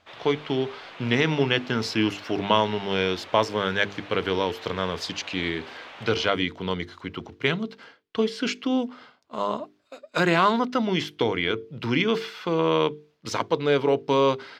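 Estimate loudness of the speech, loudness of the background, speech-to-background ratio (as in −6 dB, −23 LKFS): −25.5 LKFS, −42.5 LKFS, 17.0 dB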